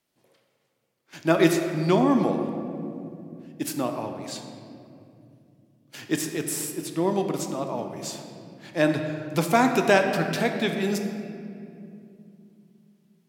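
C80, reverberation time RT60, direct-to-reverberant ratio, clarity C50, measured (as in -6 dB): 7.0 dB, 2.6 s, 4.5 dB, 6.0 dB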